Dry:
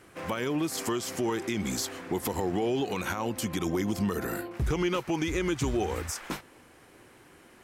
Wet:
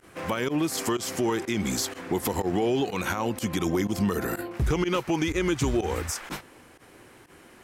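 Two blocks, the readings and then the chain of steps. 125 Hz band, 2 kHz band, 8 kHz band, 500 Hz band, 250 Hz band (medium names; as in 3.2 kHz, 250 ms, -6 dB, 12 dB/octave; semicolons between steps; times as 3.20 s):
+3.5 dB, +3.0 dB, +3.0 dB, +3.0 dB, +3.0 dB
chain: volume shaper 124 bpm, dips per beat 1, -20 dB, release 66 ms; trim +3.5 dB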